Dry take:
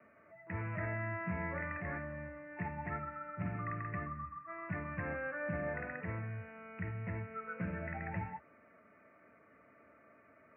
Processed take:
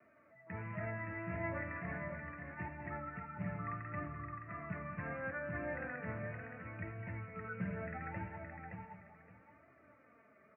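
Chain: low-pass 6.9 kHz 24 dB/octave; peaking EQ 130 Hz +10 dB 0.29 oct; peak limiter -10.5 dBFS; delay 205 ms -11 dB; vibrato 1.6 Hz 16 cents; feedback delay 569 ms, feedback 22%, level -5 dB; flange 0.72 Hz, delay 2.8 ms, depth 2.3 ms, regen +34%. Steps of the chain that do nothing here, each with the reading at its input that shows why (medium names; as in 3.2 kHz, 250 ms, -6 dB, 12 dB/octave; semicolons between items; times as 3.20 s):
low-pass 6.9 kHz: input has nothing above 2.4 kHz; peak limiter -10.5 dBFS: peak at its input -25.0 dBFS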